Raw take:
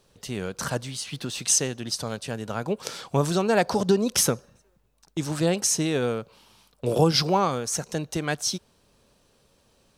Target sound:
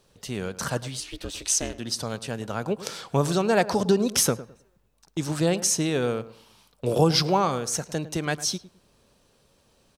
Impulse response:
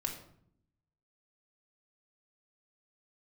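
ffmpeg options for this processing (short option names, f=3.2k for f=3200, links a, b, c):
-filter_complex "[0:a]asplit=2[a][b];[b]adelay=106,lowpass=f=1.6k:p=1,volume=-15dB,asplit=2[c][d];[d]adelay=106,lowpass=f=1.6k:p=1,volume=0.25,asplit=2[e][f];[f]adelay=106,lowpass=f=1.6k:p=1,volume=0.25[g];[a][c][e][g]amix=inputs=4:normalize=0,asettb=1/sr,asplit=3[h][i][j];[h]atrim=end=1.004[k];[i]atrim=start=1:end=1.79,asetpts=PTS-STARTPTS,afade=t=in:d=0.004:c=qsin,afade=t=out:st=0.786:d=0.004:c=qsin,aeval=exprs='val(0)*sin(2*PI*170*n/s)':c=same[l];[j]atrim=start=1.786[m];[k][l]acrossfade=d=0.004:c1=hsin:c2=qsin[n];[n][m]acrossfade=d=0.004:c1=qsin:c2=hsin"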